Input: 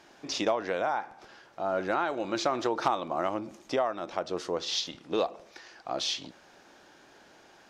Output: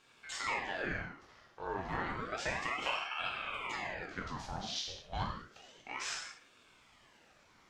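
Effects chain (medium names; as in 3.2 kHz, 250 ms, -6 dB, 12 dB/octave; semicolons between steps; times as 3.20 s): gated-style reverb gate 240 ms falling, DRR -1.5 dB; spectral replace 3.33–3.90 s, 260–2000 Hz after; ring modulator with a swept carrier 1.1 kHz, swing 80%, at 0.31 Hz; trim -8.5 dB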